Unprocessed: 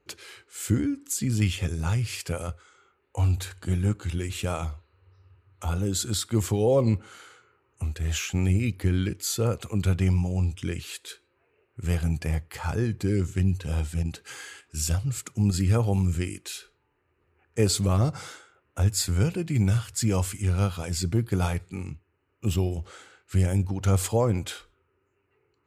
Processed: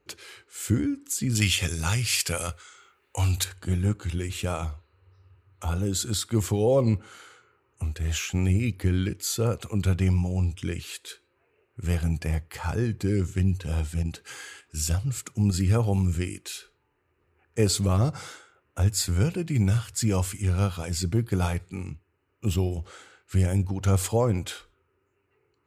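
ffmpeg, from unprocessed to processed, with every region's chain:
-filter_complex "[0:a]asettb=1/sr,asplit=3[a][b][c];[a]atrim=end=1.354[d];[b]atrim=start=1.35:end=3.44,asetpts=PTS-STARTPTS,afade=t=in:d=0.004:c=qsin,afade=t=out:st=2.086:d=0.004:c=qsin,acontrast=34,tiltshelf=f=1.4k:g=-6.5[e];[c]atrim=start=3.436[f];[d][e]acrossfade=d=0.004:c1=hsin:c2=qsin[g];[g][f]acrossfade=d=0.004:c1=qsin:c2=hsin"

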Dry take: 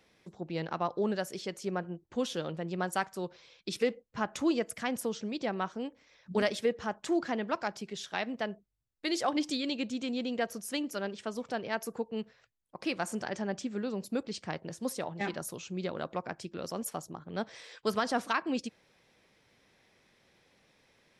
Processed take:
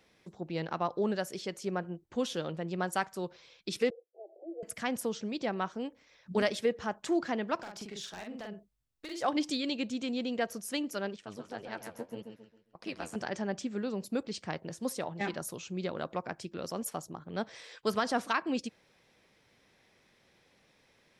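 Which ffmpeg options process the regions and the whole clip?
-filter_complex "[0:a]asettb=1/sr,asplit=3[a][b][c];[a]atrim=end=3.904[d];[b]atrim=start=3.9:end=4.63,asetpts=PTS-STARTPTS,afade=t=in:d=0.004:c=qsin,afade=t=out:st=0.726:d=0.004:c=qsin,acompressor=threshold=-34dB:ratio=12:attack=3.2:release=140:knee=1:detection=peak,asuperpass=centerf=500:order=20:qfactor=1.2[e];[c]atrim=start=4.626[f];[d][e]acrossfade=d=0.004:c1=hsin:c2=qsin[g];[g][f]acrossfade=d=0.004:c1=qsin:c2=hsin,asettb=1/sr,asplit=3[h][i][j];[h]atrim=end=7.554[k];[i]atrim=start=7.55:end=9.22,asetpts=PTS-STARTPTS,afade=t=in:d=0.004:c=qsin,afade=t=out:st=1.666:d=0.004:c=qsin,acompressor=threshold=-38dB:ratio=16:attack=3.2:release=140:knee=1:detection=peak,aeval=exprs='0.0178*(abs(mod(val(0)/0.0178+3,4)-2)-1)':c=same,asplit=2[l][m];[m]adelay=44,volume=-3dB[n];[l][n]amix=inputs=2:normalize=0,atrim=end_sample=73647[o];[j]atrim=start=9.216[p];[k][o]acrossfade=d=0.004:c1=hsin:c2=qsin[q];[q][p]acrossfade=d=0.004:c1=qsin:c2=hsin,asettb=1/sr,asplit=3[r][s][t];[r]atrim=end=11.164[u];[s]atrim=start=11.16:end=13.16,asetpts=PTS-STARTPTS,afade=t=in:d=0.004:c=qsin,afade=t=out:st=1.996:d=0.004:c=qsin,tremolo=f=100:d=0.857,aecho=1:1:134|268|402|536:0.447|0.17|0.0645|0.0245,atrim=end_sample=88200,flanger=delay=3.9:depth=9.7:regen=47:speed=1.8:shape=triangular[v];[t]atrim=start=13.156[w];[u][v]acrossfade=d=0.004:c1=hsin:c2=qsin[x];[x][w]acrossfade=d=0.004:c1=qsin:c2=hsin"

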